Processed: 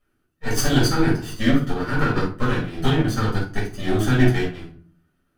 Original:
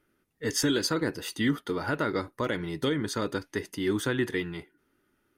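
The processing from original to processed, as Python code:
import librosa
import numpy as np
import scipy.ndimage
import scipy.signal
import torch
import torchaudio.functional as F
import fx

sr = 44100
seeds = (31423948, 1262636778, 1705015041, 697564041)

y = fx.lower_of_two(x, sr, delay_ms=0.66)
y = fx.room_shoebox(y, sr, seeds[0], volume_m3=410.0, walls='furnished', distance_m=6.1)
y = fx.upward_expand(y, sr, threshold_db=-27.0, expansion=1.5)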